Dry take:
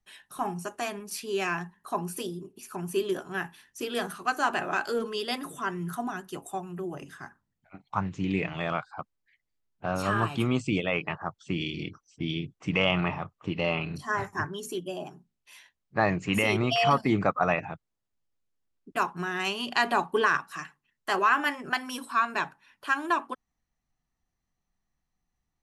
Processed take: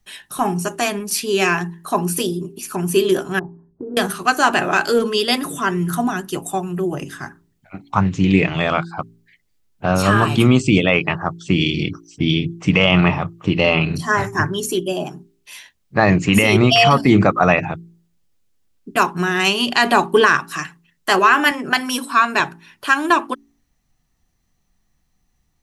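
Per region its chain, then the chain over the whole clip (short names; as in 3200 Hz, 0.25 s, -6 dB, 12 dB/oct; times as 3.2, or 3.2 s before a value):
3.39–3.97 Gaussian blur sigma 12 samples + compressor, threshold -39 dBFS
21.51–22.4 HPF 160 Hz + mismatched tape noise reduction decoder only
whole clip: bell 1000 Hz -5 dB 2.4 oct; de-hum 56.34 Hz, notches 7; maximiser +17 dB; gain -1.5 dB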